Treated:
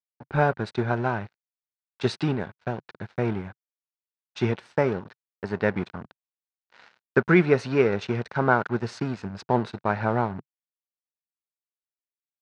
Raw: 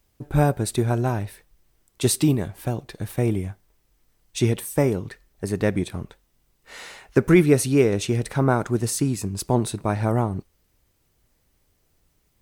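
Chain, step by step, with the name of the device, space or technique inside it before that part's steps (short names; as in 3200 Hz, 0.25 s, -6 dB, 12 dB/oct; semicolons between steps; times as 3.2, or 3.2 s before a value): blown loudspeaker (crossover distortion -36 dBFS; speaker cabinet 120–4300 Hz, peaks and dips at 140 Hz -4 dB, 300 Hz -8 dB, 900 Hz +4 dB, 1500 Hz +8 dB, 3300 Hz -4 dB)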